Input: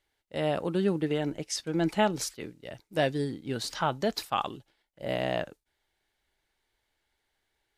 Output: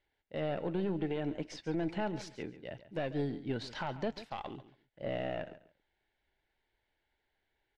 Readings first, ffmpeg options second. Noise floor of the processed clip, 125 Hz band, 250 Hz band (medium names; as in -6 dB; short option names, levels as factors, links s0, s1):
-82 dBFS, -5.5 dB, -5.5 dB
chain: -filter_complex "[0:a]aeval=exprs='(tanh(10*val(0)+0.4)-tanh(0.4))/10':c=same,alimiter=level_in=1.26:limit=0.0631:level=0:latency=1:release=141,volume=0.794,lowpass=3000,equalizer=f=1200:t=o:w=0.23:g=-10,asplit=2[s0][s1];[s1]aecho=0:1:139|278:0.178|0.0356[s2];[s0][s2]amix=inputs=2:normalize=0"